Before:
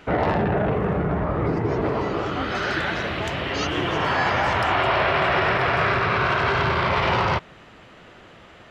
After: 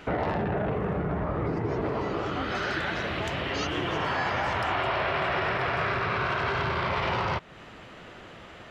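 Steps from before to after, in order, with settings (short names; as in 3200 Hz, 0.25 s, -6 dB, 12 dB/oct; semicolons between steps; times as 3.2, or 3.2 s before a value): compressor 2:1, threshold -32 dBFS, peak gain reduction 8.5 dB; gain +1 dB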